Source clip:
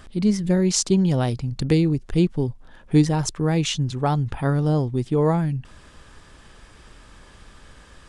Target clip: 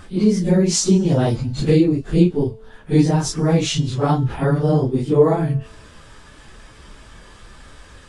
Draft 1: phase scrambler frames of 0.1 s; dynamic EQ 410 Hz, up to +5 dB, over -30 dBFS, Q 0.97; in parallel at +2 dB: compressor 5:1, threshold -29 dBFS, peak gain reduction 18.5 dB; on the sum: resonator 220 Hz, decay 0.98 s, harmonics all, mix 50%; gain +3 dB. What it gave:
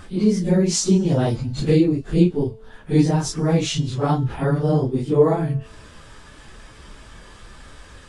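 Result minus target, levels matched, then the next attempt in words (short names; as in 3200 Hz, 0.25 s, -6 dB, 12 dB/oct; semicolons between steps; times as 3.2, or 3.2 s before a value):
compressor: peak gain reduction +7 dB
phase scrambler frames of 0.1 s; dynamic EQ 410 Hz, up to +5 dB, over -30 dBFS, Q 0.97; in parallel at +2 dB: compressor 5:1, threshold -20.5 dBFS, peak gain reduction 11.5 dB; on the sum: resonator 220 Hz, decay 0.98 s, harmonics all, mix 50%; gain +3 dB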